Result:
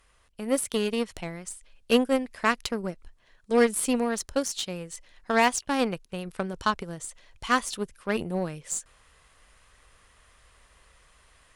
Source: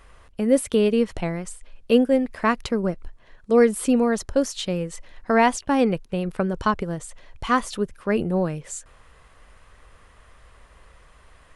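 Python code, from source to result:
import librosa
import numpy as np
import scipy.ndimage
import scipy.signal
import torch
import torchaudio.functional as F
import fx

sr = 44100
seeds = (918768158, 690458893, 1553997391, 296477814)

y = fx.high_shelf(x, sr, hz=2300.0, db=11.5)
y = fx.cheby_harmonics(y, sr, harmonics=(7, 8), levels_db=(-23, -36), full_scale_db=-2.5)
y = fx.rider(y, sr, range_db=3, speed_s=2.0)
y = y * librosa.db_to_amplitude(-6.0)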